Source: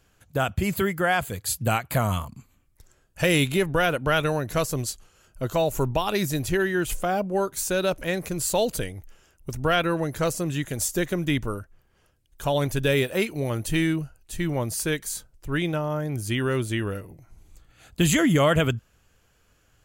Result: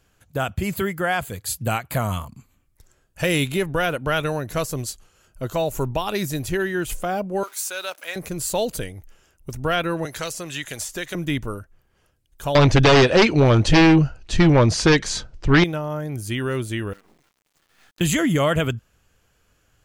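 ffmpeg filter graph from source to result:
-filter_complex "[0:a]asettb=1/sr,asplit=3[s0][s1][s2];[s0]atrim=end=7.434[s3];[s1]atrim=start=7.43:end=8.16,asetpts=PTS-STARTPTS,afade=t=in:d=0.004:c=qsin,afade=t=out:st=0.726:d=0.004:c=qsin,aeval=exprs='val(0)+0.5*0.00944*sgn(val(0))':c=same,highpass=960,bandreject=f=1800:w=16[s4];[s2]atrim=start=8.156[s5];[s3][s4]acrossfade=d=0.004:c1=hsin:c2=qsin[s6];[s6][s5]acrossfade=d=0.004:c1=qsin:c2=hsin,asettb=1/sr,asplit=3[s7][s8][s9];[s7]atrim=end=10.054[s10];[s8]atrim=start=10.05:end=11.15,asetpts=PTS-STARTPTS,afade=t=in:d=0.004:c=qsin,afade=t=out:st=1.096:d=0.004:c=qsin,equalizer=f=4000:t=o:w=3:g=8,acrossover=split=470|2500[s11][s12][s13];[s11]acompressor=threshold=0.0141:ratio=4[s14];[s12]acompressor=threshold=0.0316:ratio=4[s15];[s13]acompressor=threshold=0.0282:ratio=4[s16];[s14][s15][s16]amix=inputs=3:normalize=0[s17];[s9]atrim=start=11.146[s18];[s10][s17]acrossfade=d=0.004:c1=hsin:c2=qsin[s19];[s19][s18]acrossfade=d=0.004:c1=qsin:c2=hsin,asettb=1/sr,asplit=3[s20][s21][s22];[s20]atrim=end=12.554[s23];[s21]atrim=start=12.55:end=15.64,asetpts=PTS-STARTPTS,afade=t=in:d=0.004:c=qsin,afade=t=out:st=3.086:d=0.004:c=qsin,aeval=exprs='0.355*sin(PI/2*3.55*val(0)/0.355)':c=same,lowpass=f=5600:w=0.5412,lowpass=f=5600:w=1.3066[s24];[s22]atrim=start=15.636[s25];[s23][s24]acrossfade=d=0.004:c1=hsin:c2=qsin[s26];[s26][s25]acrossfade=d=0.004:c1=qsin:c2=hsin,asettb=1/sr,asplit=3[s27][s28][s29];[s27]atrim=end=16.934[s30];[s28]atrim=start=16.93:end=18.01,asetpts=PTS-STARTPTS,afade=t=in:d=0.004:c=qsin,afade=t=out:st=1.076:d=0.004:c=qsin,highpass=f=210:w=0.5412,highpass=f=210:w=1.3066,equalizer=f=350:t=q:w=4:g=-5,equalizer=f=560:t=q:w=4:g=-10,equalizer=f=1100:t=q:w=4:g=6,equalizer=f=1800:t=q:w=4:g=8,lowpass=f=7200:w=0.5412,lowpass=f=7200:w=1.3066,acrusher=bits=7:dc=4:mix=0:aa=0.000001,acompressor=threshold=0.00398:ratio=5:attack=3.2:release=140:knee=1:detection=peak[s31];[s29]atrim=start=18.006[s32];[s30][s31]acrossfade=d=0.004:c1=hsin:c2=qsin[s33];[s33][s32]acrossfade=d=0.004:c1=qsin:c2=hsin"

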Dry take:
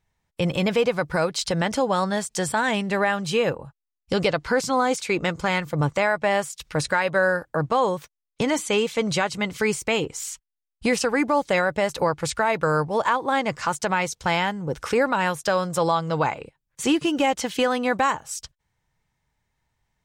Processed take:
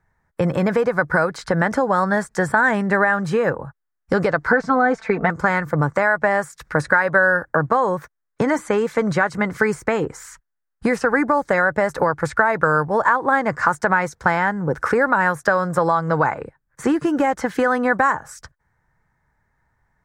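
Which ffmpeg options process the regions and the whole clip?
-filter_complex "[0:a]asettb=1/sr,asplit=3[s0][s1][s2];[s0]atrim=end=4.524[s3];[s1]atrim=start=4.52:end=5.3,asetpts=PTS-STARTPTS,afade=t=in:d=0.004:c=qsin,afade=t=out:st=0.776:d=0.004:c=qsin,lowpass=3000,equalizer=f=720:w=3.8:g=8.5,aecho=1:1:4.5:0.83,atrim=end_sample=34398[s4];[s2]atrim=start=5.296[s5];[s3][s4]acrossfade=d=0.004:c1=hsin:c2=qsin[s6];[s6][s5]acrossfade=d=0.004:c1=qsin:c2=hsin,acrossover=split=89|4000[s7][s8][s9];[s7]acompressor=threshold=0.002:ratio=4[s10];[s8]acompressor=threshold=0.0708:ratio=4[s11];[s9]acompressor=threshold=0.0178:ratio=4[s12];[s10][s11][s12]amix=inputs=3:normalize=0,highshelf=f=2200:t=q:w=3:g=-10,volume=2.24"

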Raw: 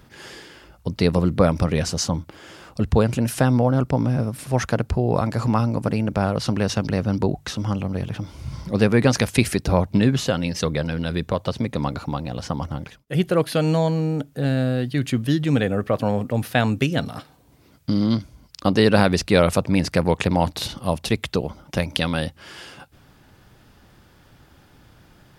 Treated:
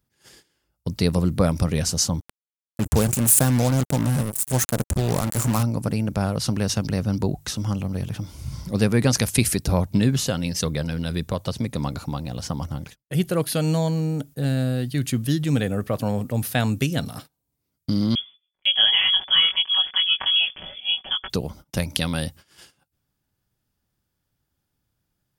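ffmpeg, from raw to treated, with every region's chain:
-filter_complex "[0:a]asettb=1/sr,asplit=3[s0][s1][s2];[s0]atrim=end=2.204[s3];[s1]atrim=start=2.2:end=5.63,asetpts=PTS-STARTPTS,afade=t=in:d=0.004:c=qsin,afade=t=out:st=3.426:d=0.004:c=qsin,highshelf=f=6200:t=q:w=3:g=6.5,bandreject=f=50:t=h:w=6,bandreject=f=100:t=h:w=6,acrusher=bits=3:mix=0:aa=0.5[s4];[s2]atrim=start=5.626[s5];[s3][s4]acrossfade=d=0.004:c1=hsin:c2=qsin[s6];[s6][s5]acrossfade=d=0.004:c1=qsin:c2=hsin,asettb=1/sr,asplit=3[s7][s8][s9];[s7]atrim=end=18.154[s10];[s8]atrim=start=18.15:end=21.3,asetpts=PTS-STARTPTS,afade=t=in:d=0.004:c=qsin,afade=t=out:st=3.146:d=0.004:c=qsin,aecho=1:1:5.5:0.9,atrim=end_sample=138915,flanger=delay=18.5:depth=3.9:speed=1.6,lowpass=f=3000:t=q:w=0.5098,lowpass=f=3000:t=q:w=0.6013,lowpass=f=3000:t=q:w=0.9,lowpass=f=3000:t=q:w=2.563,afreqshift=-3500[s11];[s9]atrim=start=21.296[s12];[s10][s11]acrossfade=d=0.004:c1=hsin:c2=qsin[s13];[s13][s12]acrossfade=d=0.004:c1=qsin:c2=hsin,bass=f=250:g=5,treble=f=4000:g=5,agate=range=0.0631:threshold=0.0158:ratio=16:detection=peak,highshelf=f=7000:g=11.5,volume=0.562"

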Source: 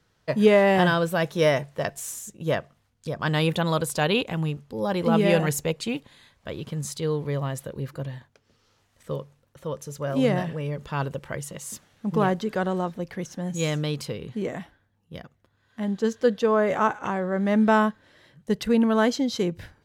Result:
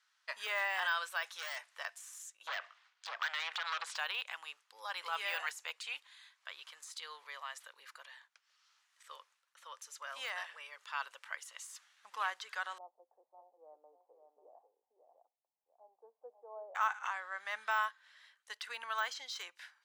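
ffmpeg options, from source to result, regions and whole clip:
-filter_complex "[0:a]asettb=1/sr,asplit=3[s0][s1][s2];[s0]atrim=end=1.274[s3];[s1]atrim=start=1.27:end=1.73,asetpts=PTS-STARTPTS,afade=t=in:d=0.004:c=qsin,afade=t=out:st=0.456:d=0.004:c=qsin,lowshelf=f=270:g=-12,volume=18.8,asoftclip=hard,volume=0.0531[s4];[s2]atrim=start=1.726[s5];[s3][s4]acrossfade=d=0.004:c1=hsin:c2=qsin[s6];[s6][s5]acrossfade=d=0.004:c1=qsin:c2=hsin,asettb=1/sr,asplit=3[s7][s8][s9];[s7]atrim=end=2.474[s10];[s8]atrim=start=2.47:end=3.97,asetpts=PTS-STARTPTS,afade=t=in:d=0.004:c=qsin,afade=t=out:st=1.496:d=0.004:c=qsin,acompressor=threshold=0.0355:ratio=6:attack=3.2:release=140:knee=1:detection=peak,aeval=exprs='0.0841*sin(PI/2*2.82*val(0)/0.0841)':c=same,highpass=200,lowpass=4000[s11];[s9]atrim=start=3.966[s12];[s10][s11]acrossfade=d=0.004:c1=hsin:c2=qsin[s13];[s13][s12]acrossfade=d=0.004:c1=qsin:c2=hsin,asettb=1/sr,asplit=3[s14][s15][s16];[s14]atrim=end=12.784[s17];[s15]atrim=start=12.78:end=16.75,asetpts=PTS-STARTPTS,afade=t=in:d=0.004:c=qsin,afade=t=out:st=3.966:d=0.004:c=qsin,asuperpass=centerf=450:order=12:qfactor=0.79,aecho=1:1:542:0.447,atrim=end_sample=175077[s18];[s16]atrim=start=16.746[s19];[s17][s18]acrossfade=d=0.004:c1=hsin:c2=qsin[s20];[s20][s19]acrossfade=d=0.004:c1=qsin:c2=hsin,lowpass=10000,deesser=0.9,highpass=f=1100:w=0.5412,highpass=f=1100:w=1.3066,volume=0.631"

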